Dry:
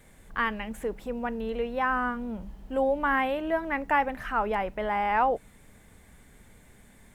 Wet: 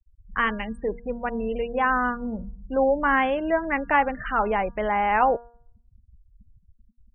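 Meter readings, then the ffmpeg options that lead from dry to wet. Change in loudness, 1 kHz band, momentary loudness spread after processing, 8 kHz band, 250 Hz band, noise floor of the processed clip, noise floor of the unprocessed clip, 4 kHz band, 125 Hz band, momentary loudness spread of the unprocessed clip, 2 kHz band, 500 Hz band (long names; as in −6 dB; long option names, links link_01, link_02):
+4.0 dB, +4.0 dB, 10 LU, can't be measured, +4.0 dB, −62 dBFS, −56 dBFS, +2.5 dB, +4.0 dB, 9 LU, +4.5 dB, +4.5 dB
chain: -af "afftfilt=real='re*gte(hypot(re,im),0.0158)':imag='im*gte(hypot(re,im),0.0158)':win_size=1024:overlap=0.75,bandreject=frequency=900:width=23,bandreject=frequency=236.5:width_type=h:width=4,bandreject=frequency=473:width_type=h:width=4,bandreject=frequency=709.5:width_type=h:width=4,bandreject=frequency=946:width_type=h:width=4,bandreject=frequency=1182.5:width_type=h:width=4,bandreject=frequency=1419:width_type=h:width=4,bandreject=frequency=1655.5:width_type=h:width=4,volume=4.5dB"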